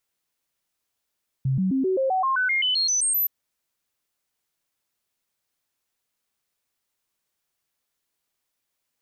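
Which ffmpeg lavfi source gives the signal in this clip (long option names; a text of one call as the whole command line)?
ffmpeg -f lavfi -i "aevalsrc='0.106*clip(min(mod(t,0.13),0.13-mod(t,0.13))/0.005,0,1)*sin(2*PI*133*pow(2,floor(t/0.13)/2)*mod(t,0.13))':duration=1.82:sample_rate=44100" out.wav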